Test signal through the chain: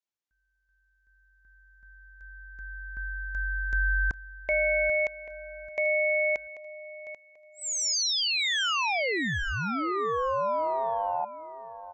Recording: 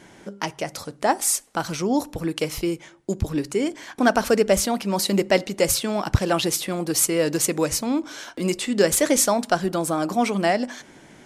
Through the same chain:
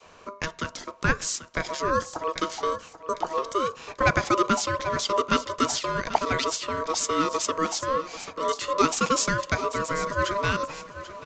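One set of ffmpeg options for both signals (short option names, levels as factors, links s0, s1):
-filter_complex "[0:a]adynamicequalizer=threshold=0.0224:dfrequency=730:dqfactor=1.1:tfrequency=730:tqfactor=1.1:attack=5:release=100:ratio=0.375:range=2:mode=cutabove:tftype=bell,acrossover=split=180|590|3100[s0][s1][s2][s3];[s0]aeval=exprs='clip(val(0),-1,0.0316)':c=same[s4];[s4][s1][s2][s3]amix=inputs=4:normalize=0,aeval=exprs='val(0)*sin(2*PI*800*n/s)':c=same,aecho=1:1:788|1576|2364:0.2|0.0519|0.0135,aresample=16000,aresample=44100"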